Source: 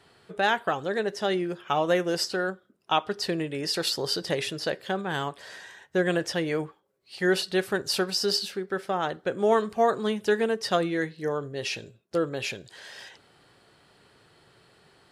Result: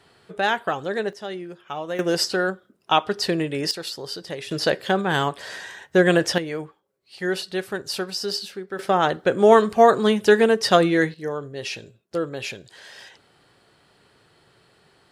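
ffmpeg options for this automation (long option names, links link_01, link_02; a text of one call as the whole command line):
ffmpeg -i in.wav -af "asetnsamples=nb_out_samples=441:pad=0,asendcmd='1.13 volume volume -6dB;1.99 volume volume 5.5dB;3.71 volume volume -4.5dB;4.51 volume volume 8dB;6.38 volume volume -1.5dB;8.79 volume volume 8.5dB;11.14 volume volume 0.5dB',volume=2dB" out.wav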